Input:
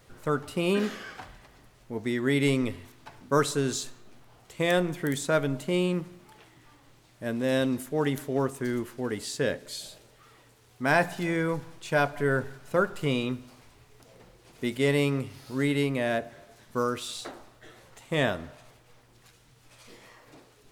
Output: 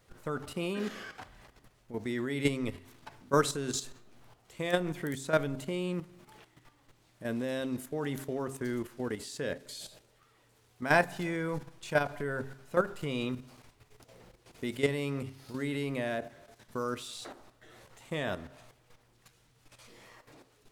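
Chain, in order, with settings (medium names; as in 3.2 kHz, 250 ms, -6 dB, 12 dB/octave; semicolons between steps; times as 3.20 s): level held to a coarse grid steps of 11 dB; de-hum 133.6 Hz, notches 3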